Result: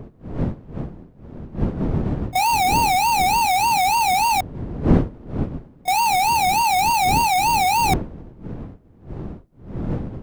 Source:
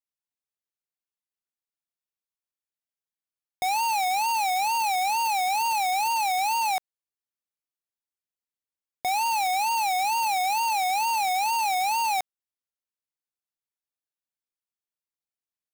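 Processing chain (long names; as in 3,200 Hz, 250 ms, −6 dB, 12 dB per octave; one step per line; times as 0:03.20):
wind on the microphone 220 Hz −33 dBFS
echo ahead of the sound 39 ms −18.5 dB
time stretch by overlap-add 0.65×, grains 25 ms
level +7.5 dB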